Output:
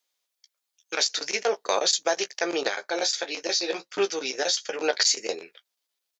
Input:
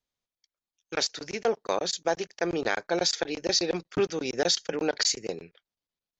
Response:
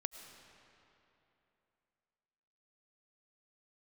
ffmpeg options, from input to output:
-filter_complex "[0:a]highpass=440,highshelf=f=2400:g=8,alimiter=limit=0.158:level=0:latency=1:release=89,asplit=3[s0][s1][s2];[s0]afade=t=out:st=2.67:d=0.02[s3];[s1]flanger=delay=9.6:depth=5.8:regen=-30:speed=1.5:shape=triangular,afade=t=in:st=2.67:d=0.02,afade=t=out:st=4.83:d=0.02[s4];[s2]afade=t=in:st=4.83:d=0.02[s5];[s3][s4][s5]amix=inputs=3:normalize=0,asplit=2[s6][s7];[s7]adelay=15,volume=0.355[s8];[s6][s8]amix=inputs=2:normalize=0,volume=1.68"

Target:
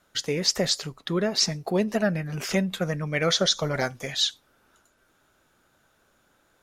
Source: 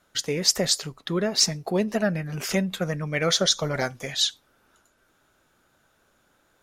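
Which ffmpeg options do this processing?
-filter_complex "[0:a]acrossover=split=6300[s0][s1];[s1]acompressor=threshold=0.0126:ratio=4:attack=1:release=60[s2];[s0][s2]amix=inputs=2:normalize=0"

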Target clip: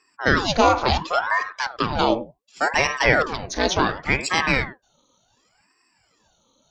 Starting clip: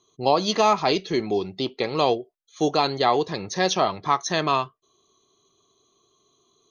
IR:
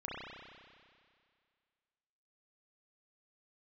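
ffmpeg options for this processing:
-filter_complex "[0:a]aphaser=in_gain=1:out_gain=1:delay=2.2:decay=0.23:speed=1.6:type=sinusoidal,asplit=2[s0][s1];[1:a]atrim=start_sample=2205,atrim=end_sample=3087,asetrate=29547,aresample=44100[s2];[s1][s2]afir=irnorm=-1:irlink=0,volume=0.316[s3];[s0][s3]amix=inputs=2:normalize=0,aeval=exprs='val(0)*sin(2*PI*790*n/s+790*0.85/0.69*sin(2*PI*0.69*n/s))':c=same,volume=1.26"

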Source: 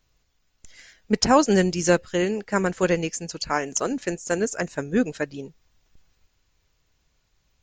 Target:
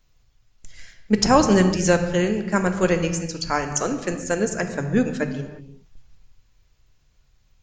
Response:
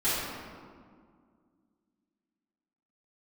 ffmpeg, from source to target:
-filter_complex "[0:a]asplit=2[s0][s1];[s1]lowshelf=f=190:t=q:w=1.5:g=11[s2];[1:a]atrim=start_sample=2205,afade=t=out:st=0.42:d=0.01,atrim=end_sample=18963[s3];[s2][s3]afir=irnorm=-1:irlink=0,volume=0.141[s4];[s0][s4]amix=inputs=2:normalize=0"

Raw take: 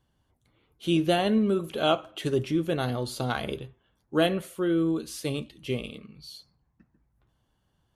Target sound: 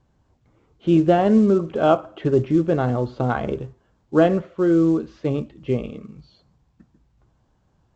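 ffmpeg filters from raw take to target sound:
-af "lowpass=1300,volume=2.51" -ar 16000 -c:a pcm_mulaw

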